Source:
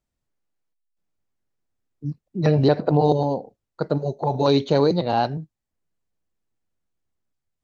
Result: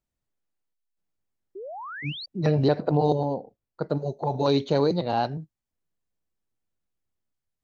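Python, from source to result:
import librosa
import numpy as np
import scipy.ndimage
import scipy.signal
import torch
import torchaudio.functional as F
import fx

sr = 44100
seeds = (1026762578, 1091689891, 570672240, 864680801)

y = fx.spec_paint(x, sr, seeds[0], shape='rise', start_s=1.55, length_s=0.71, low_hz=360.0, high_hz=4800.0, level_db=-33.0)
y = fx.high_shelf(y, sr, hz=3300.0, db=-8.0, at=(3.15, 3.89))
y = y * 10.0 ** (-4.0 / 20.0)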